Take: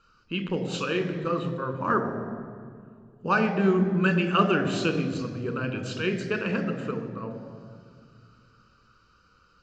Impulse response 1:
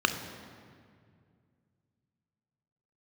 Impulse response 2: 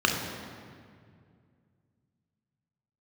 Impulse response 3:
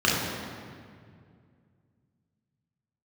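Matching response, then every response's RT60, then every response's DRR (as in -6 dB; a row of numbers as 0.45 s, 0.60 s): 1; 2.2 s, 2.2 s, 2.2 s; 6.5 dB, 0.5 dB, -6.0 dB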